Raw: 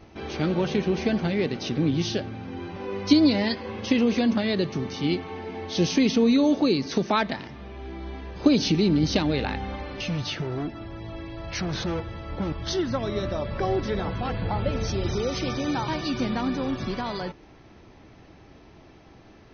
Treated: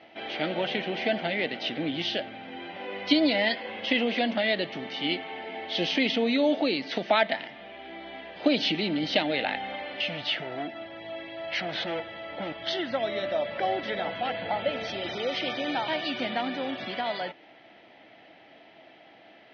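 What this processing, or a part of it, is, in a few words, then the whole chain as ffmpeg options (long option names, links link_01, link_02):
phone earpiece: -af "highpass=350,equalizer=frequency=400:width_type=q:width=4:gain=-8,equalizer=frequency=670:width_type=q:width=4:gain=8,equalizer=frequency=1100:width_type=q:width=4:gain=-9,equalizer=frequency=2000:width_type=q:width=4:gain=7,equalizer=frequency=3100:width_type=q:width=4:gain=8,lowpass=frequency=4100:width=0.5412,lowpass=frequency=4100:width=1.3066"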